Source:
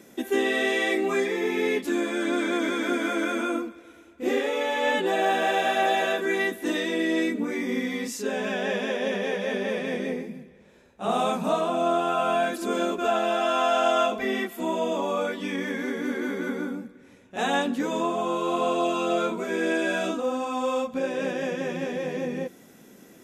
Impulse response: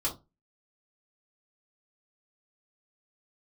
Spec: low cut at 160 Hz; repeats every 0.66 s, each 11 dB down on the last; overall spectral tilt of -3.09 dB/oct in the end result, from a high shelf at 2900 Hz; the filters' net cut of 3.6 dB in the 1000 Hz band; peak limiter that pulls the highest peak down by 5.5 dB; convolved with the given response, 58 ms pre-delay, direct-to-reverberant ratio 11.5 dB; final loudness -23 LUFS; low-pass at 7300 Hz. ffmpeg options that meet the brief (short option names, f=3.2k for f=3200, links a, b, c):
-filter_complex "[0:a]highpass=160,lowpass=7.3k,equalizer=f=1k:t=o:g=-6.5,highshelf=f=2.9k:g=8,alimiter=limit=-17.5dB:level=0:latency=1,aecho=1:1:660|1320|1980:0.282|0.0789|0.0221,asplit=2[a][b];[1:a]atrim=start_sample=2205,adelay=58[c];[b][c]afir=irnorm=-1:irlink=0,volume=-17dB[d];[a][d]amix=inputs=2:normalize=0,volume=4dB"